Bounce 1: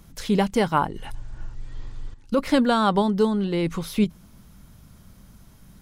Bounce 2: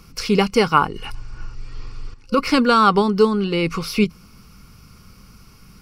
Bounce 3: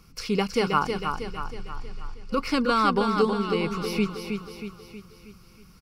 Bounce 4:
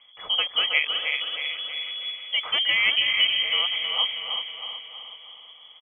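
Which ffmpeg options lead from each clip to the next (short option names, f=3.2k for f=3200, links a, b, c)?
-af "superequalizer=7b=1.58:8b=0.562:10b=2.51:12b=2.82:14b=3.16,volume=2.5dB"
-af "aecho=1:1:318|636|954|1272|1590|1908:0.501|0.256|0.13|0.0665|0.0339|0.0173,volume=-8dB"
-af "lowpass=f=2.9k:t=q:w=0.5098,lowpass=f=2.9k:t=q:w=0.6013,lowpass=f=2.9k:t=q:w=0.9,lowpass=f=2.9k:t=q:w=2.563,afreqshift=-3400,aecho=1:1:372|744|1116|1488|1860:0.376|0.18|0.0866|0.0416|0.02"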